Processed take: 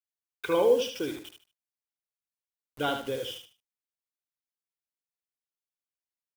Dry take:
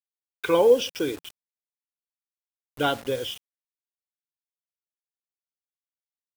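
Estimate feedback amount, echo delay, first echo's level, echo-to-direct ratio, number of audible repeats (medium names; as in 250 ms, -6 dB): 25%, 75 ms, -7.0 dB, -6.5 dB, 3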